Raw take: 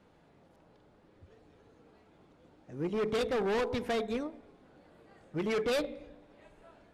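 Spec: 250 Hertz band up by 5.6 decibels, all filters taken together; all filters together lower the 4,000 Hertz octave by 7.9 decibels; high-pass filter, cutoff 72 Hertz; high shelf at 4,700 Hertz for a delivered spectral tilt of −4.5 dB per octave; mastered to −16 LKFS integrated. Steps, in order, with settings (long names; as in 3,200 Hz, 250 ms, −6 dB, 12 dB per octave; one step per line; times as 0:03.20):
high-pass filter 72 Hz
parametric band 250 Hz +7 dB
parametric band 4,000 Hz −7.5 dB
high-shelf EQ 4,700 Hz −6 dB
level +14.5 dB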